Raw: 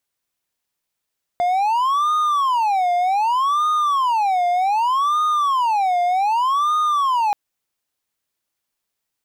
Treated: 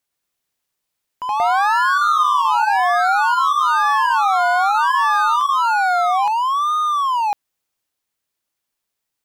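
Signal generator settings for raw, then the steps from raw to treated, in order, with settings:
siren wail 705–1230 Hz 0.65/s triangle -13.5 dBFS 5.93 s
echoes that change speed 0.114 s, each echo +3 st, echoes 2

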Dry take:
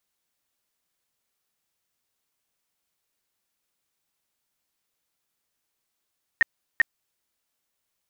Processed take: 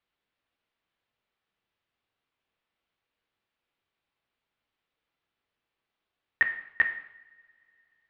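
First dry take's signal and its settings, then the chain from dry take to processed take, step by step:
tone bursts 1850 Hz, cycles 29, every 0.39 s, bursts 2, -13 dBFS
LPF 3500 Hz 24 dB/oct; two-slope reverb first 0.72 s, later 3.5 s, from -27 dB, DRR 5 dB

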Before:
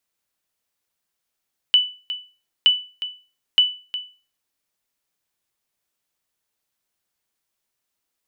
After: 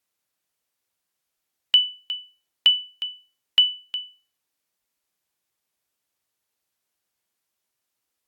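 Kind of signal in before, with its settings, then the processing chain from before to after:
sonar ping 2980 Hz, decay 0.35 s, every 0.92 s, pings 3, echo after 0.36 s, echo -13.5 dB -7 dBFS
low shelf 63 Hz -3 dB; notches 50/100/150/200 Hz; Vorbis 96 kbps 48000 Hz

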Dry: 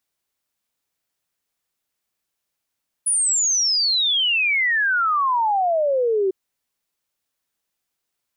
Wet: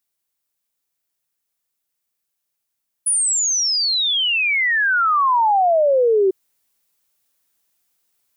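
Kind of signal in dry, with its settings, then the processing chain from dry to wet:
log sweep 10000 Hz -> 370 Hz 3.25 s -16.5 dBFS
high shelf 7200 Hz +9 dB; vocal rider

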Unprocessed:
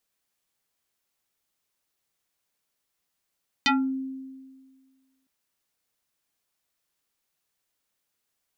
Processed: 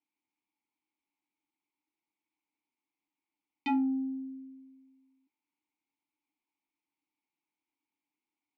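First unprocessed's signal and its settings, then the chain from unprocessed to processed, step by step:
FM tone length 1.61 s, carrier 265 Hz, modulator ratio 4.19, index 4.5, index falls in 0.27 s exponential, decay 1.71 s, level -17 dB
in parallel at +2.5 dB: soft clip -30.5 dBFS; on the sum: vowel filter u

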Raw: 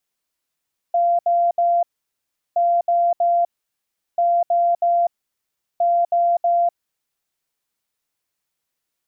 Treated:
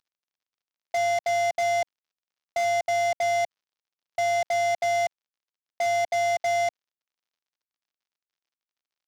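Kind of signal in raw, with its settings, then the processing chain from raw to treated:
beep pattern sine 691 Hz, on 0.25 s, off 0.07 s, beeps 3, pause 0.73 s, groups 4, -14 dBFS
CVSD 32 kbps; low shelf 500 Hz -7.5 dB; wavefolder -20 dBFS

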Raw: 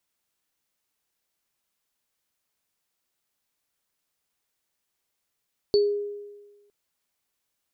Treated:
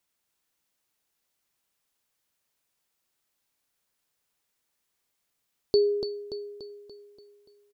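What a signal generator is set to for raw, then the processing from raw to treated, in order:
sine partials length 0.96 s, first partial 410 Hz, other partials 4470 Hz, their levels -9 dB, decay 1.28 s, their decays 0.24 s, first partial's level -15 dB
feedback echo 0.289 s, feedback 52%, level -7 dB

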